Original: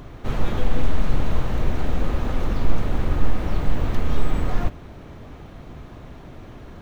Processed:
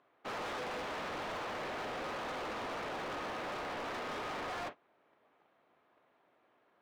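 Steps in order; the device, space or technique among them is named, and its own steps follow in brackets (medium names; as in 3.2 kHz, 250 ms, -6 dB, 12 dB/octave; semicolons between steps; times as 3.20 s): walkie-talkie (band-pass 570–2800 Hz; hard clipper -39.5 dBFS, distortion -7 dB; gate -45 dBFS, range -23 dB); trim +1.5 dB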